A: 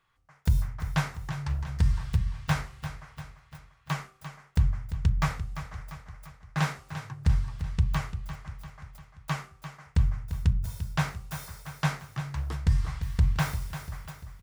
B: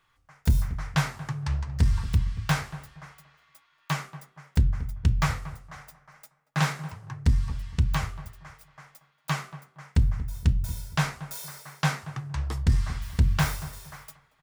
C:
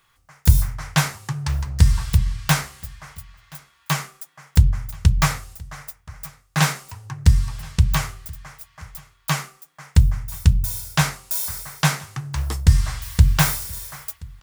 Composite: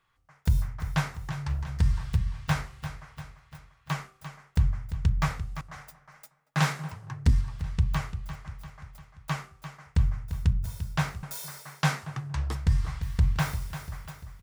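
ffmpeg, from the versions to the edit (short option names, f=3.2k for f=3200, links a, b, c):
-filter_complex "[1:a]asplit=2[a][b];[0:a]asplit=3[c][d][e];[c]atrim=end=5.612[f];[a]atrim=start=5.608:end=7.412[g];[d]atrim=start=7.408:end=11.232[h];[b]atrim=start=11.228:end=12.552[i];[e]atrim=start=12.548[j];[f][g]acrossfade=d=0.004:c1=hsin:c2=hsin[k];[k][h]acrossfade=d=0.004:c1=hsin:c2=hsin[l];[l][i]acrossfade=d=0.004:c1=hsin:c2=hsin[m];[m][j]acrossfade=d=0.004:c1=hsin:c2=hsin"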